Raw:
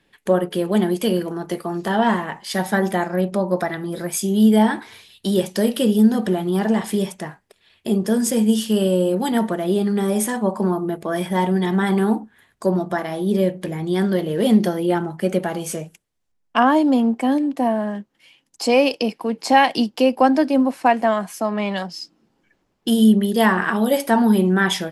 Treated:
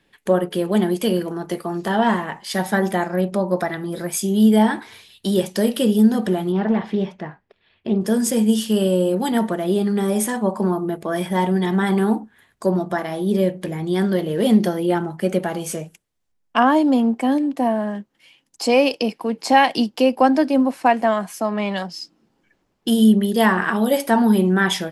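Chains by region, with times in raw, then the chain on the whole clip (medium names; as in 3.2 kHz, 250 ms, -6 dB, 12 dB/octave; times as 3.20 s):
6.52–8.01 s: distance through air 270 m + loudspeaker Doppler distortion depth 0.16 ms
whole clip: none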